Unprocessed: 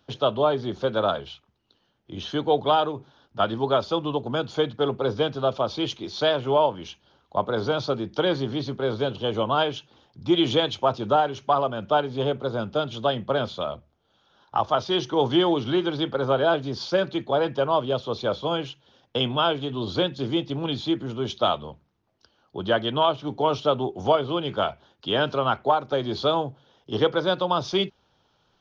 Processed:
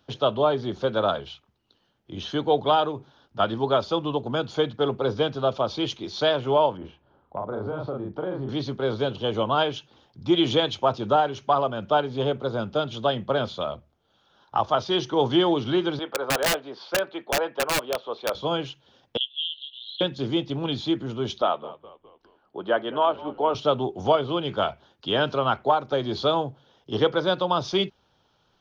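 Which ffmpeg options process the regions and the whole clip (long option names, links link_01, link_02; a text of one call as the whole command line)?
ffmpeg -i in.wav -filter_complex "[0:a]asettb=1/sr,asplit=3[link_01][link_02][link_03];[link_01]atrim=end=6.774[link_04];[link_02]atrim=start=6.77:end=8.49,asetpts=PTS-STARTPTS,afade=type=in:duration=0.004:curve=qsin,afade=type=out:start_time=1.716:duration=0.004:curve=qsin,lowpass=1200,asplit=2[link_05][link_06];[link_06]adelay=38,volume=-2.5dB[link_07];[link_05][link_07]amix=inputs=2:normalize=0,atrim=end_sample=75852,acompressor=threshold=-28dB:ratio=3:attack=3.2:release=140:knee=1:detection=peak[link_08];[link_03]atrim=start=8.486[link_09];[link_04][link_08]acrossfade=duration=0.004:curve1=hsin:curve2=qsin[link_10];[link_10][link_09]acrossfade=duration=0.004:curve1=qsin:curve2=hsin,asettb=1/sr,asplit=3[link_11][link_12][link_13];[link_11]atrim=end=15.994[link_14];[link_12]atrim=start=15.99:end=18.35,asetpts=PTS-STARTPTS,afade=type=in:duration=0.004:curve=qsin,afade=type=out:start_time=2.356:duration=0.004:curve=qsin,highpass=480,lowpass=2500,aeval=exprs='(mod(7.08*val(0)+1,2)-1)/7.08':channel_layout=same[link_15];[link_13]atrim=start=18.346[link_16];[link_14][link_15]acrossfade=duration=0.004:curve1=hsin:curve2=qsin[link_17];[link_17][link_16]acrossfade=duration=0.004:curve1=qsin:curve2=hsin,asettb=1/sr,asplit=3[link_18][link_19][link_20];[link_18]atrim=end=19.174[link_21];[link_19]atrim=start=19.17:end=20.01,asetpts=PTS-STARTPTS,afade=type=in:duration=0.004:curve=qsin,afade=type=out:start_time=0.836:duration=0.004:curve=qsin,asuperpass=centerf=3400:order=20:qfactor=2.4,acompressor=mode=upward:threshold=-34dB:ratio=2.5:attack=3.2:release=140:knee=2.83:detection=peak[link_22];[link_20]atrim=start=20.006[link_23];[link_21][link_22]acrossfade=duration=0.004:curve1=hsin:curve2=qsin[link_24];[link_24][link_23]acrossfade=duration=0.004:curve1=qsin:curve2=hsin,asettb=1/sr,asplit=3[link_25][link_26][link_27];[link_25]atrim=end=21.424[link_28];[link_26]atrim=start=21.42:end=23.55,asetpts=PTS-STARTPTS,afade=type=in:duration=0.004:curve=qsin,afade=type=out:start_time=2.126:duration=0.004:curve=qsin,highpass=300,lowpass=2100,asplit=5[link_29][link_30][link_31][link_32][link_33];[link_30]adelay=206,afreqshift=-63,volume=-18dB[link_34];[link_31]adelay=412,afreqshift=-126,volume=-24.4dB[link_35];[link_32]adelay=618,afreqshift=-189,volume=-30.8dB[link_36];[link_33]adelay=824,afreqshift=-252,volume=-37.1dB[link_37];[link_29][link_34][link_35][link_36][link_37]amix=inputs=5:normalize=0,atrim=end_sample=93933[link_38];[link_27]atrim=start=23.546[link_39];[link_28][link_38]acrossfade=duration=0.004:curve1=hsin:curve2=qsin[link_40];[link_40][link_39]acrossfade=duration=0.004:curve1=qsin:curve2=hsin" out.wav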